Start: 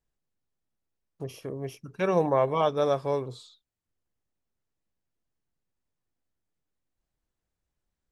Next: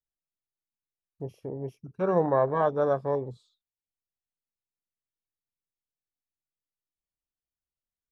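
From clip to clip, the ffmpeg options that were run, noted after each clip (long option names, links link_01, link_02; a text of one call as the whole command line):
ffmpeg -i in.wav -af "afwtdn=0.02" out.wav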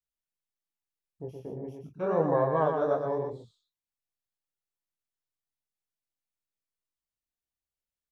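ffmpeg -i in.wav -af "flanger=delay=18.5:depth=6.7:speed=2.7,aecho=1:1:120:0.531" out.wav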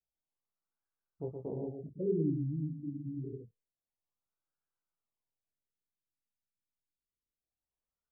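ffmpeg -i in.wav -af "lowpass=frequency=2200:width_type=q:width=4.9,afftfilt=real='re*lt(b*sr/1024,300*pow(1700/300,0.5+0.5*sin(2*PI*0.27*pts/sr)))':imag='im*lt(b*sr/1024,300*pow(1700/300,0.5+0.5*sin(2*PI*0.27*pts/sr)))':win_size=1024:overlap=0.75" out.wav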